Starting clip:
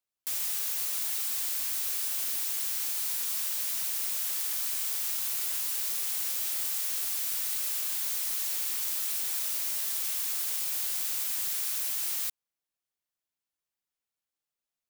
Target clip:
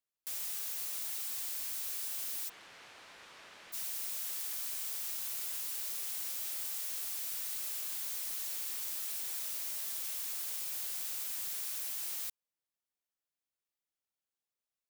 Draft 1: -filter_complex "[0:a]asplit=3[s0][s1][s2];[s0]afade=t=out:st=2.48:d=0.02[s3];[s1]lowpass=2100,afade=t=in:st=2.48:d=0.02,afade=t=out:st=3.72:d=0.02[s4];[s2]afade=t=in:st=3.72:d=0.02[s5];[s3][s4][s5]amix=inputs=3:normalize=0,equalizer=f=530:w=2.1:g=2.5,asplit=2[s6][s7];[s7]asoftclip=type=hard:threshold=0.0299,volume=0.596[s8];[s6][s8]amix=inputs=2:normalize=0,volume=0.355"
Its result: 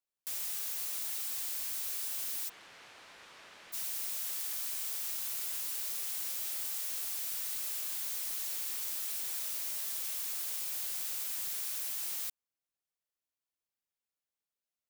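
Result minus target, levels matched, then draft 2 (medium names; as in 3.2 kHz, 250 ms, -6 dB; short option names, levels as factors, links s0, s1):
hard clipper: distortion -5 dB
-filter_complex "[0:a]asplit=3[s0][s1][s2];[s0]afade=t=out:st=2.48:d=0.02[s3];[s1]lowpass=2100,afade=t=in:st=2.48:d=0.02,afade=t=out:st=3.72:d=0.02[s4];[s2]afade=t=in:st=3.72:d=0.02[s5];[s3][s4][s5]amix=inputs=3:normalize=0,equalizer=f=530:w=2.1:g=2.5,asplit=2[s6][s7];[s7]asoftclip=type=hard:threshold=0.0119,volume=0.596[s8];[s6][s8]amix=inputs=2:normalize=0,volume=0.355"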